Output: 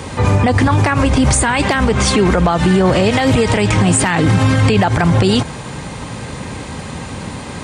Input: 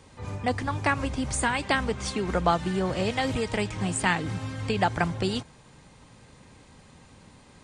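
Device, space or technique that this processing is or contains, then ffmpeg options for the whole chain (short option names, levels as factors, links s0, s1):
mastering chain: -af "highpass=48,equalizer=f=5400:t=o:w=1.6:g=-3,acompressor=threshold=0.0355:ratio=2.5,asoftclip=type=hard:threshold=0.119,alimiter=level_in=29.9:limit=0.891:release=50:level=0:latency=1,volume=0.668"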